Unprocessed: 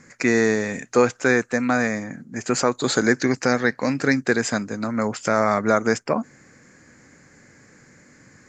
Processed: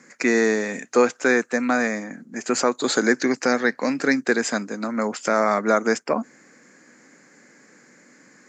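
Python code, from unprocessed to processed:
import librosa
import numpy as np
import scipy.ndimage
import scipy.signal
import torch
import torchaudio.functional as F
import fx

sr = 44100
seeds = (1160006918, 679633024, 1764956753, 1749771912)

y = scipy.signal.sosfilt(scipy.signal.butter(4, 200.0, 'highpass', fs=sr, output='sos'), x)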